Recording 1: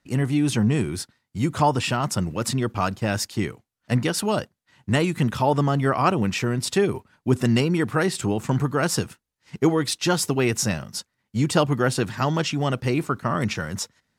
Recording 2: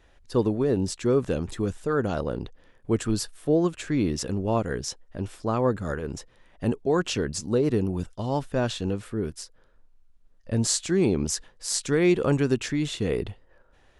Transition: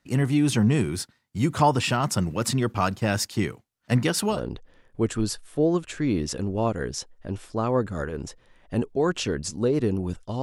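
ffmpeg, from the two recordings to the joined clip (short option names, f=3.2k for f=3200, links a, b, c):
-filter_complex "[0:a]apad=whole_dur=10.42,atrim=end=10.42,atrim=end=4.43,asetpts=PTS-STARTPTS[a];[1:a]atrim=start=2.17:end=8.32,asetpts=PTS-STARTPTS[b];[a][b]acrossfade=d=0.16:c1=tri:c2=tri"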